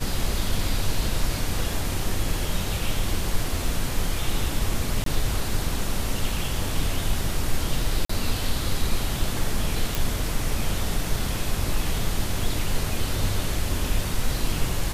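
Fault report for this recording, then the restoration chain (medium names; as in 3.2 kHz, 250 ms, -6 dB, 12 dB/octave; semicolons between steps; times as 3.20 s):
5.04–5.06 s: dropout 23 ms
8.05–8.09 s: dropout 44 ms
9.95 s: pop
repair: de-click; interpolate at 5.04 s, 23 ms; interpolate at 8.05 s, 44 ms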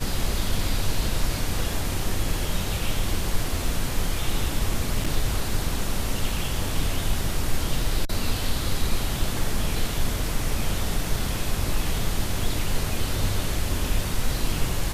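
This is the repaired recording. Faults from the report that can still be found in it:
nothing left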